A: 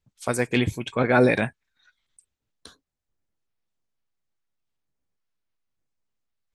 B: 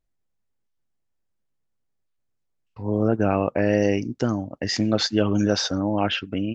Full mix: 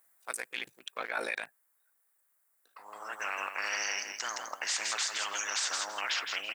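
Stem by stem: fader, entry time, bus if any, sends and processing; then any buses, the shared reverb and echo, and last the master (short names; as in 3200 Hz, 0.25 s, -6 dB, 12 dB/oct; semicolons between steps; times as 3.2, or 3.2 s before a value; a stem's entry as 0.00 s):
-2.5 dB, 0.00 s, no send, no echo send, Wiener smoothing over 41 samples; ring modulator 27 Hz
-5.0 dB, 0.00 s, no send, echo send -8.5 dB, band shelf 4100 Hz -12.5 dB; spectral compressor 4:1; auto duck -10 dB, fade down 1.80 s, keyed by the first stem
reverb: off
echo: feedback echo 0.164 s, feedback 17%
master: HPF 1100 Hz 12 dB/oct; high shelf 7600 Hz +11.5 dB; limiter -21.5 dBFS, peak gain reduction 9.5 dB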